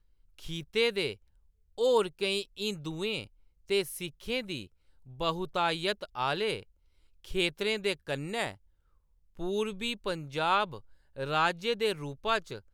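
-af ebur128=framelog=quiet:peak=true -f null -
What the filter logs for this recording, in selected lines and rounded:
Integrated loudness:
  I:         -31.6 LUFS
  Threshold: -42.2 LUFS
Loudness range:
  LRA:         2.8 LU
  Threshold: -52.8 LUFS
  LRA low:   -34.3 LUFS
  LRA high:  -31.5 LUFS
True peak:
  Peak:      -13.8 dBFS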